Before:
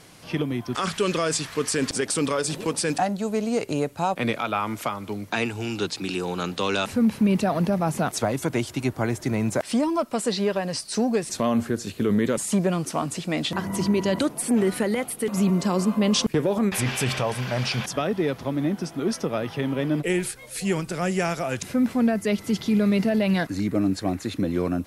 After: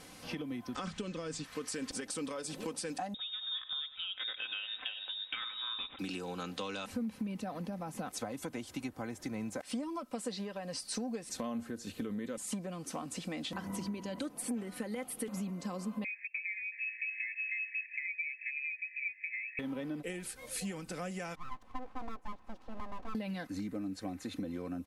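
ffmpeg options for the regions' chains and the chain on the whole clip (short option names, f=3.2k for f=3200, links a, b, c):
-filter_complex "[0:a]asettb=1/sr,asplit=3[a][b][c];[a]atrim=end=0.754[d];[b]atrim=start=0.75:end=1.44,asetpts=PTS-STARTPTS,afade=t=in:d=0.004:c=qsin,afade=t=out:st=0.686:d=0.004:c=qsin,lowpass=f=8.6k:w=0.5412,lowpass=f=8.6k:w=1.3066,lowshelf=f=290:g=12[e];[c]atrim=start=1.436[f];[d][e]acrossfade=d=0.004:c1=hsin:c2=qsin[g];[g][f]acrossfade=d=0.004:c1=qsin:c2=hsin,asettb=1/sr,asplit=3[h][i][j];[h]atrim=end=3.144[k];[i]atrim=start=3.14:end=5.99,asetpts=PTS-STARTPTS,afade=t=in:d=0.004:c=qsin,afade=t=out:st=2.846:d=0.004:c=qsin,lowpass=f=3.3k:t=q:w=0.5098,lowpass=f=3.3k:t=q:w=0.6013,lowpass=f=3.3k:t=q:w=0.9,lowpass=f=3.3k:t=q:w=2.563,afreqshift=-3900,asplit=2[l][m];[m]adelay=96,lowpass=f=1.8k:p=1,volume=-12dB,asplit=2[n][o];[o]adelay=96,lowpass=f=1.8k:p=1,volume=0.48,asplit=2[p][q];[q]adelay=96,lowpass=f=1.8k:p=1,volume=0.48,asplit=2[r][s];[s]adelay=96,lowpass=f=1.8k:p=1,volume=0.48,asplit=2[t][u];[u]adelay=96,lowpass=f=1.8k:p=1,volume=0.48[v];[l][n][p][r][t][v]amix=inputs=6:normalize=0,atrim=end_sample=125685[w];[j]atrim=start=5.986[x];[k][w]acrossfade=d=0.004:c1=hsin:c2=qsin[y];[y][x]acrossfade=d=0.004:c1=qsin:c2=hsin,asettb=1/sr,asplit=3[z][aa][ab];[z]atrim=end=16.044[ac];[aa]atrim=start=16.04:end=19.59,asetpts=PTS-STARTPTS,afade=t=in:d=0.004:c=qsin,afade=t=out:st=3.546:d=0.004:c=qsin,asuperstop=centerf=2000:order=20:qfactor=0.66,asoftclip=type=hard:threshold=-13.5dB,lowpass=f=2.3k:t=q:w=0.5098,lowpass=f=2.3k:t=q:w=0.6013,lowpass=f=2.3k:t=q:w=0.9,lowpass=f=2.3k:t=q:w=2.563,afreqshift=-2700[ad];[ab]atrim=start=19.586[ae];[ac][ad]acrossfade=d=0.004:c1=hsin:c2=qsin[af];[af][ae]acrossfade=d=0.004:c1=qsin:c2=hsin,asettb=1/sr,asplit=3[ag][ah][ai];[ag]atrim=end=21.354[aj];[ah]atrim=start=21.35:end=23.15,asetpts=PTS-STARTPTS,afade=t=in:d=0.004:c=qsin,afade=t=out:st=1.796:d=0.004:c=qsin,bandpass=f=540:t=q:w=4.5,aeval=exprs='abs(val(0))':c=same[ak];[ai]atrim=start=23.146[al];[aj][ak]acrossfade=d=0.004:c1=hsin:c2=qsin[am];[am][al]acrossfade=d=0.004:c1=qsin:c2=hsin,acompressor=threshold=-33dB:ratio=10,aecho=1:1:3.9:0.5,volume=-4dB"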